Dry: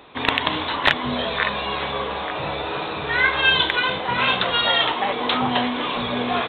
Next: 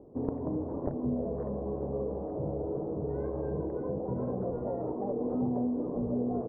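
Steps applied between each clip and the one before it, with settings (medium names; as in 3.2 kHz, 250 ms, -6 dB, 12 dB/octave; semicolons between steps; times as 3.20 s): inverse Chebyshev low-pass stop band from 3 kHz, stop band 80 dB; compression 2:1, threshold -30 dBFS, peak gain reduction 5.5 dB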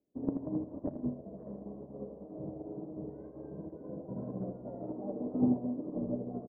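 small resonant body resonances 200/290/600 Hz, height 9 dB, ringing for 35 ms; on a send: feedback delay 80 ms, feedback 45%, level -6 dB; on the sum: upward expansion 2.5:1, over -41 dBFS; trim -3.5 dB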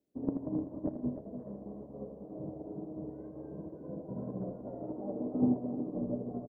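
delay 302 ms -10 dB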